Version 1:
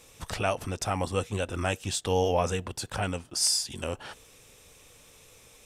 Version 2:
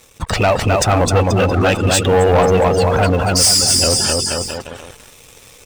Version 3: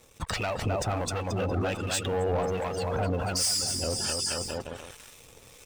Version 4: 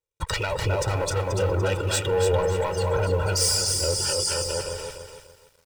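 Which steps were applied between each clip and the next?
bouncing-ball delay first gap 260 ms, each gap 0.85×, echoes 5; gate on every frequency bin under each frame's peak −20 dB strong; leveller curve on the samples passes 3; level +6 dB
downward compressor, threshold −19 dBFS, peak gain reduction 9 dB; two-band tremolo in antiphase 1.3 Hz, depth 50%, crossover 1,000 Hz; level −6 dB
noise gate −45 dBFS, range −39 dB; comb filter 2.1 ms, depth 95%; feedback echo at a low word length 291 ms, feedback 35%, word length 9 bits, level −7 dB; level +1 dB

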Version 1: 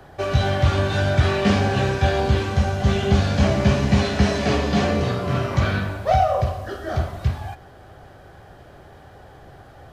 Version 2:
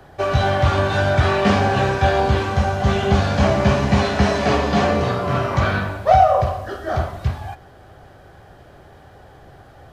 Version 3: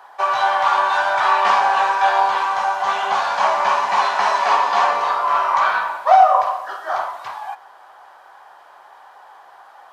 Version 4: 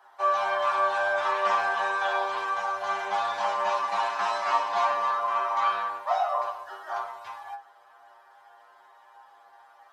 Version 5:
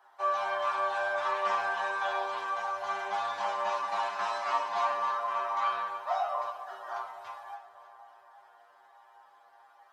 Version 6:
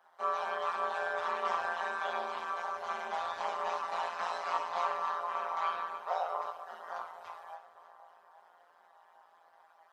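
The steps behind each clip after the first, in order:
dynamic equaliser 950 Hz, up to +7 dB, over −36 dBFS, Q 0.76
high-pass with resonance 960 Hz, resonance Q 5.1; level −1 dB
stiff-string resonator 95 Hz, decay 0.34 s, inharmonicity 0.002
echo with a time of its own for lows and highs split 1,200 Hz, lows 478 ms, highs 295 ms, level −14 dB; level −5 dB
amplitude modulation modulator 170 Hz, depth 75%

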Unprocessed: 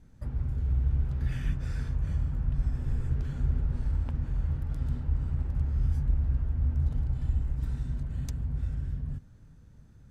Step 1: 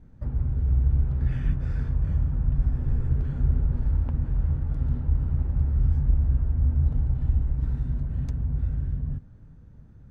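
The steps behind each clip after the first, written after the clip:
low-pass filter 1,100 Hz 6 dB per octave
level +5 dB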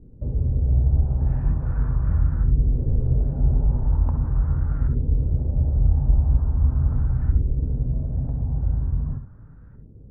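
auto-filter low-pass saw up 0.41 Hz 400–1,600 Hz
reverb whose tail is shaped and stops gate 90 ms rising, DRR 7.5 dB
level +2.5 dB

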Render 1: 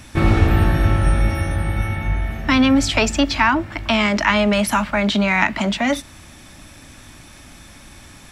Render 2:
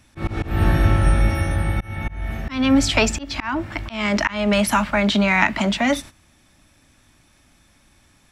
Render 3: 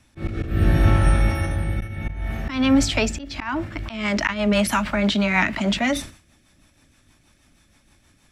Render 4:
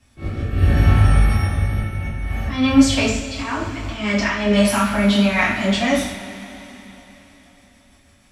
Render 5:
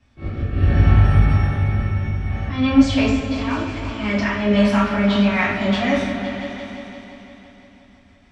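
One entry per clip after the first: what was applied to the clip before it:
noise gate −34 dBFS, range −14 dB; volume swells 257 ms
rotating-speaker cabinet horn 0.7 Hz, later 6.3 Hz, at 0:03.28; level that may fall only so fast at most 130 dB per second
coupled-rooms reverb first 0.53 s, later 4.1 s, from −18 dB, DRR −8 dB; level −6 dB
high-frequency loss of the air 140 metres; echo whose low-pass opens from repeat to repeat 171 ms, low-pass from 400 Hz, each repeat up 2 octaves, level −6 dB; level −1 dB

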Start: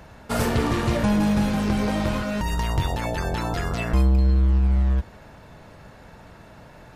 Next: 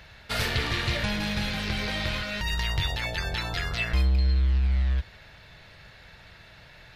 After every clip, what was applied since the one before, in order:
octave-band graphic EQ 250/500/1,000/2,000/4,000/8,000 Hz −11/−3/−6/+7/+11/−5 dB
level −3.5 dB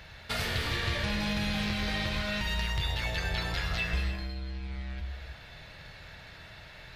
downward compressor 2.5 to 1, threshold −32 dBFS, peak gain reduction 8 dB
reverb whose tail is shaped and stops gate 350 ms flat, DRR 3 dB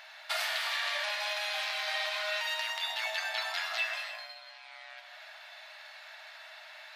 linear-phase brick-wall high-pass 580 Hz
level +1 dB

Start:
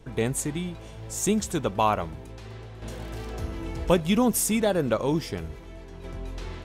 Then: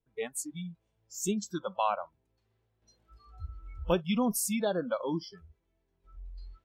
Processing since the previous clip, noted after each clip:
noise reduction from a noise print of the clip's start 29 dB
level −6 dB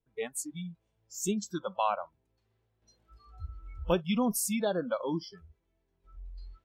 no processing that can be heard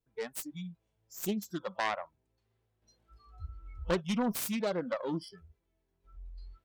phase distortion by the signal itself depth 0.32 ms
tape wow and flutter 22 cents
level −2 dB

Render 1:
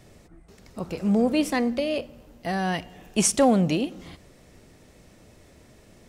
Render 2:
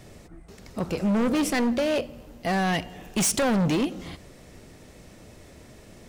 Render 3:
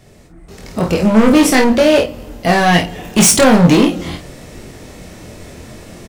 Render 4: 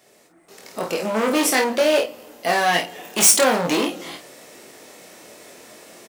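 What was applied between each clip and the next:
hard clipping −25 dBFS, distortion −6 dB; level +4.5 dB
automatic gain control gain up to 12 dB; on a send: ambience of single reflections 23 ms −4 dB, 51 ms −7.5 dB
high-pass filter 410 Hz 12 dB per octave; high-shelf EQ 9,900 Hz +8 dB; level −5.5 dB

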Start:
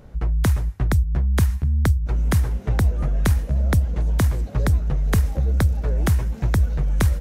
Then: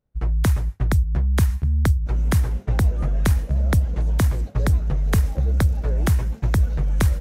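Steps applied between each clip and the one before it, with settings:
downward expander −23 dBFS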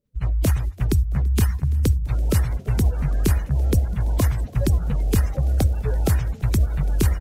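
spectral magnitudes quantised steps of 30 dB
echo with shifted repeats 336 ms, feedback 61%, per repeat +34 Hz, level −24 dB

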